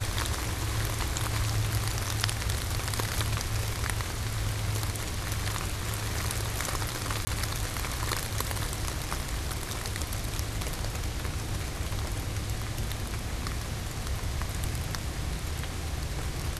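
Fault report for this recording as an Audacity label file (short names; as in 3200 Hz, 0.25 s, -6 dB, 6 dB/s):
7.250000	7.270000	gap 20 ms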